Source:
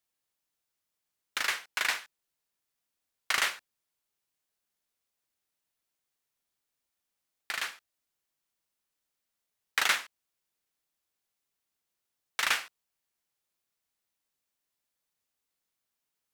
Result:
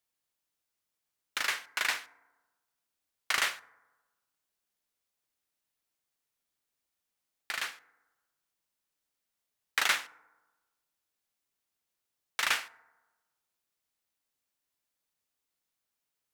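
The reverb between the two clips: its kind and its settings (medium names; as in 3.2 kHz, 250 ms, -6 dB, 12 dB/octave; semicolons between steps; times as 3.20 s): FDN reverb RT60 1.2 s, low-frequency decay 0.95×, high-frequency decay 0.35×, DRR 17.5 dB; trim -1 dB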